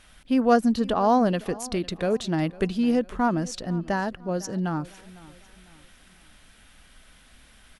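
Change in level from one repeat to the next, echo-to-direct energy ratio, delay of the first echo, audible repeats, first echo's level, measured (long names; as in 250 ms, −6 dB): −7.5 dB, −19.5 dB, 502 ms, 2, −20.5 dB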